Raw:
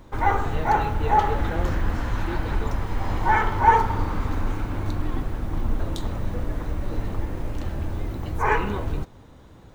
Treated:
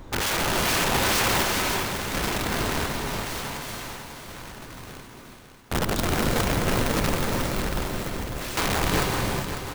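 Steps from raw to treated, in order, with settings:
hum removal 52.29 Hz, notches 23
in parallel at +1.5 dB: downward compressor 20 to 1, threshold −31 dBFS, peak gain reduction 21.5 dB
on the sum: wrap-around overflow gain 19 dB
sample-and-hold tremolo 1.4 Hz, depth 100%
on a send: repeating echo 548 ms, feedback 47%, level −9 dB
on the sum: reverb whose tail is shaped and stops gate 440 ms rising, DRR 1.5 dB

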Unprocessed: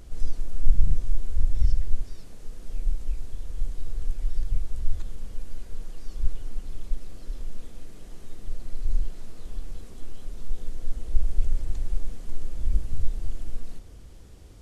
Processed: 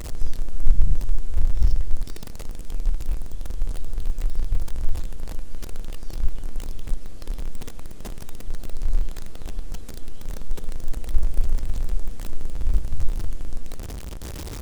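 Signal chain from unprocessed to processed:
converter with a step at zero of −30.5 dBFS
level +2 dB

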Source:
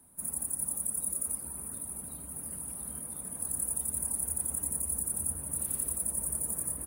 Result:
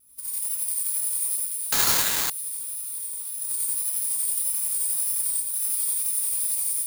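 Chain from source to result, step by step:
lower of the sound and its delayed copy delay 0.84 ms
tape wow and flutter 73 cents
mains hum 60 Hz, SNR 17 dB
first-order pre-emphasis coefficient 0.97
on a send: delay with a high-pass on its return 572 ms, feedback 46%, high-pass 1,500 Hz, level −6 dB
on the sum: reverb whose tail is shaped and stops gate 120 ms rising, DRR −5.5 dB
0:01.72–0:02.30: bad sample-rate conversion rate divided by 8×, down none, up zero stuff

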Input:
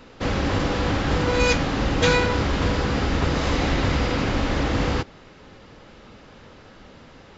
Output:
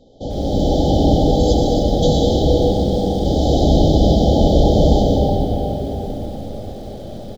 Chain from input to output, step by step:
high-shelf EQ 2,600 Hz −5.5 dB
single-tap delay 933 ms −22 dB
automatic gain control gain up to 11 dB
parametric band 590 Hz +5.5 dB 0.34 octaves
0:02.59–0:03.26: tube saturation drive 20 dB, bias 0.35
linear-phase brick-wall band-stop 860–3,000 Hz
comb and all-pass reverb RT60 5 s, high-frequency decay 0.55×, pre-delay 70 ms, DRR −3.5 dB
feedback echo at a low word length 96 ms, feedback 55%, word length 6 bits, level −12 dB
level −3 dB

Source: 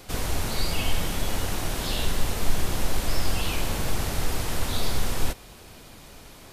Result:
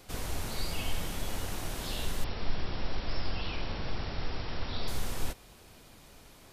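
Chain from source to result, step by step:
0:02.24–0:04.88: linear-phase brick-wall low-pass 5,700 Hz
level −8 dB

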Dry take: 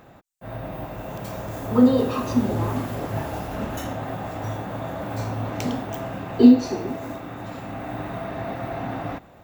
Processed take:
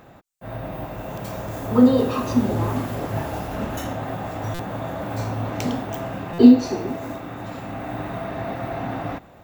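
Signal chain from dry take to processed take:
buffer that repeats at 0:04.54/0:06.33, samples 256, times 8
level +1.5 dB

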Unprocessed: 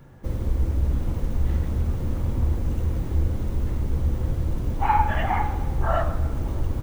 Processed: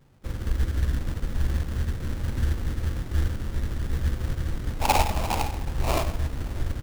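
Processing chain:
sample-rate reduction 1,700 Hz, jitter 20%
expander for the loud parts 1.5 to 1, over −36 dBFS

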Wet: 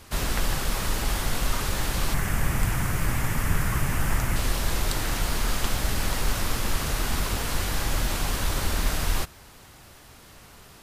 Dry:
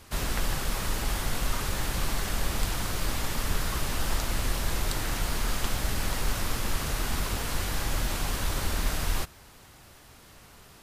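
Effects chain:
0:02.14–0:04.36: graphic EQ with 10 bands 125 Hz +9 dB, 500 Hz −3 dB, 2,000 Hz +5 dB, 4,000 Hz −11 dB
level +3 dB

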